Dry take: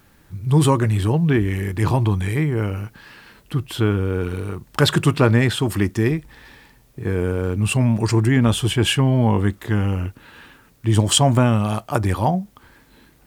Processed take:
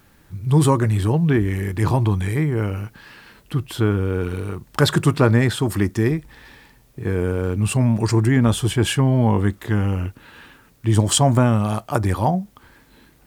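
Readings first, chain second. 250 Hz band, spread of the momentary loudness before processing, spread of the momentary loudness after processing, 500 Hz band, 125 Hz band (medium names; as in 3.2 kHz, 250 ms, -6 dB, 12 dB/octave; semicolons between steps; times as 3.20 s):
0.0 dB, 11 LU, 11 LU, 0.0 dB, 0.0 dB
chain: dynamic bell 2.8 kHz, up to -6 dB, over -40 dBFS, Q 2.3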